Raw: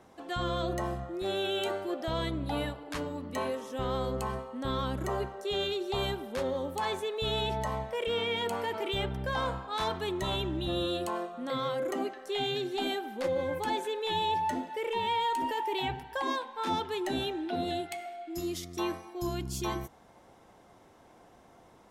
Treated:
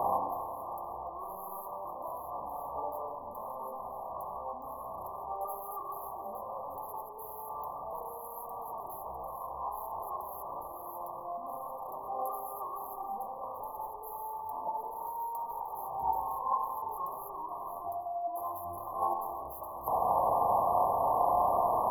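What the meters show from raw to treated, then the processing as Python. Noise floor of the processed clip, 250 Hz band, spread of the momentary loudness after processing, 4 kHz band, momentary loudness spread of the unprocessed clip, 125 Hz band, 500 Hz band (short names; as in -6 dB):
-44 dBFS, -16.5 dB, 13 LU, under -40 dB, 5 LU, -15.5 dB, -5.0 dB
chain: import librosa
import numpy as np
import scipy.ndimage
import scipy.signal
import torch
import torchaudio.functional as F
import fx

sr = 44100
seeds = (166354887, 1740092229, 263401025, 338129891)

p1 = fx.fold_sine(x, sr, drive_db=19, ceiling_db=-19.0)
p2 = x + (p1 * 10.0 ** (-4.5 / 20.0))
p3 = fx.over_compress(p2, sr, threshold_db=-33.0, ratio=-0.5)
p4 = fx.brickwall_bandstop(p3, sr, low_hz=1200.0, high_hz=11000.0)
p5 = fx.low_shelf_res(p4, sr, hz=490.0, db=-14.0, q=1.5)
p6 = p5 + fx.echo_thinned(p5, sr, ms=146, feedback_pct=67, hz=420.0, wet_db=-21, dry=0)
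y = fx.rev_spring(p6, sr, rt60_s=1.8, pass_ms=(32, 43), chirp_ms=50, drr_db=2.0)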